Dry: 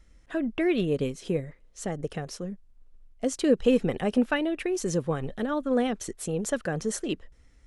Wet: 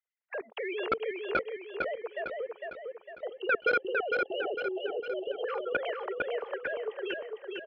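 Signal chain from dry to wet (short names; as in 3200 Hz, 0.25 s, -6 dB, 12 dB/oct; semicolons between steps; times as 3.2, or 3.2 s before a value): sine-wave speech; gate -50 dBFS, range -22 dB; elliptic high-pass 430 Hz, stop band 40 dB; level quantiser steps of 22 dB; 3.27–5.44 spectral delete 850–2700 Hz; sine folder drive 10 dB, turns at -16.5 dBFS; feedback echo 0.454 s, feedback 47%, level -3.5 dB; 4.25–5.83 three-band squash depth 40%; gain -4 dB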